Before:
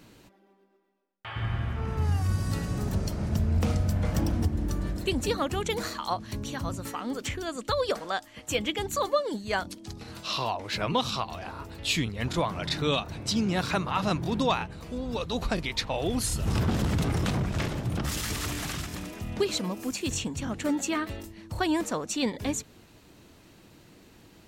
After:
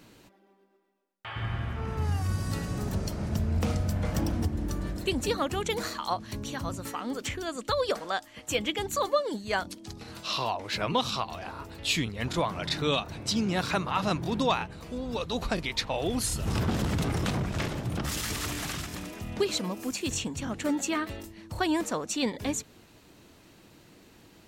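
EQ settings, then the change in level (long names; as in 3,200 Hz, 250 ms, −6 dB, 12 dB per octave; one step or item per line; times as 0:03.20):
low-shelf EQ 170 Hz −3.5 dB
0.0 dB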